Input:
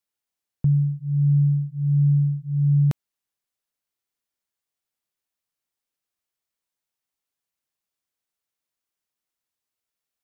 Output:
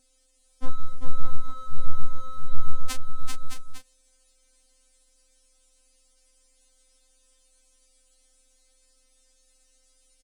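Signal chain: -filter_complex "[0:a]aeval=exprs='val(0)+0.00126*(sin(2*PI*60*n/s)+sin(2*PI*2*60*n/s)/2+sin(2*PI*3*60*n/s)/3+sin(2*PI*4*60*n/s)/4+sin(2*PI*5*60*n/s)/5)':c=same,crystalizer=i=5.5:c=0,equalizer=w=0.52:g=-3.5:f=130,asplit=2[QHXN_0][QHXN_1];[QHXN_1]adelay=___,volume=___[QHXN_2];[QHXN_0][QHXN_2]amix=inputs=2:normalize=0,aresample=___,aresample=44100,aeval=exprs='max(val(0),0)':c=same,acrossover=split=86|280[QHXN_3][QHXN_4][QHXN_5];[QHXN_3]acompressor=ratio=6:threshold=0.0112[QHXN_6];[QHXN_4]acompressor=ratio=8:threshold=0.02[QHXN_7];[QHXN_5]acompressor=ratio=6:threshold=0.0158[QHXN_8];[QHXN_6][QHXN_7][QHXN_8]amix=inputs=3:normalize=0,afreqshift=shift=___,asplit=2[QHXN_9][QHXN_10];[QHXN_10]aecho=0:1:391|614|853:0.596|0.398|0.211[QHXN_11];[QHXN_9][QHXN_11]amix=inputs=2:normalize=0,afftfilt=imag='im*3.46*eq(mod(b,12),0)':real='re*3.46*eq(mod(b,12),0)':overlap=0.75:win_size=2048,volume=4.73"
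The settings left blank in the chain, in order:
29, 0.422, 22050, -140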